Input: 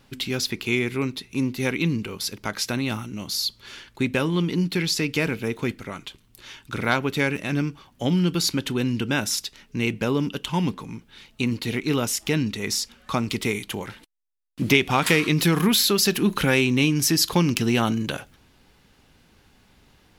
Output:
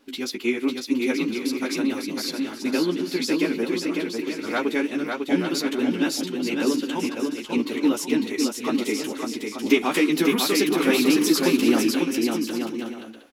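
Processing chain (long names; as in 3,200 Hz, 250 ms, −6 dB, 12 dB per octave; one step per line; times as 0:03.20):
chorus effect 2.7 Hz, delay 16.5 ms, depth 2.5 ms
low shelf with overshoot 190 Hz −14 dB, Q 3
phase-vocoder stretch with locked phases 0.66×
on a send: bouncing-ball delay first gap 550 ms, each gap 0.6×, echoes 5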